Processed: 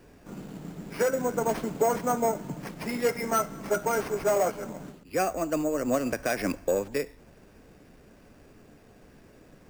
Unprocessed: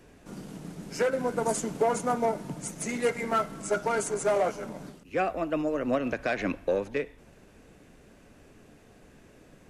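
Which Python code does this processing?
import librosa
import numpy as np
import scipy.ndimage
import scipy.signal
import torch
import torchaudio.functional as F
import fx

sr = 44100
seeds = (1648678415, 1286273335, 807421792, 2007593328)

y = fx.high_shelf(x, sr, hz=5300.0, db=-7.5)
y = np.repeat(y[::6], 6)[:len(y)]
y = y * 10.0 ** (1.0 / 20.0)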